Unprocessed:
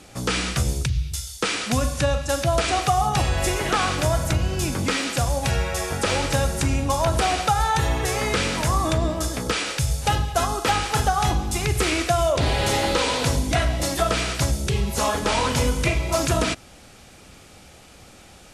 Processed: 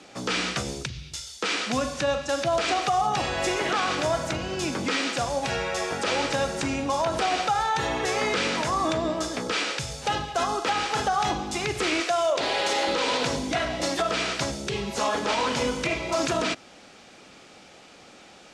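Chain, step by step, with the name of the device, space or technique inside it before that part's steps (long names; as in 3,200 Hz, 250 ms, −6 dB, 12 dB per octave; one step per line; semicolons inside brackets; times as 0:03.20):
0:12.00–0:12.87: bass and treble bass −14 dB, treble +2 dB
DJ mixer with the lows and highs turned down (three-way crossover with the lows and the highs turned down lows −19 dB, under 180 Hz, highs −23 dB, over 7,300 Hz; brickwall limiter −15.5 dBFS, peak gain reduction 7 dB)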